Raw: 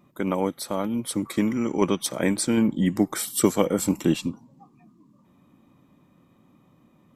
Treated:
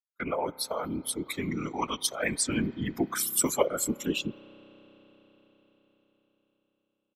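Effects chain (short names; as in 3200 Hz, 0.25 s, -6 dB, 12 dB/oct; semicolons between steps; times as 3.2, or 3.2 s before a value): per-bin expansion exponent 2; gate -46 dBFS, range -28 dB; HPF 860 Hz 6 dB/oct; comb 3.8 ms, depth 99%; in parallel at -1.5 dB: negative-ratio compressor -41 dBFS, ratio -1; on the sum: whisperiser; on a send at -19 dB: reverb RT60 5.1 s, pre-delay 31 ms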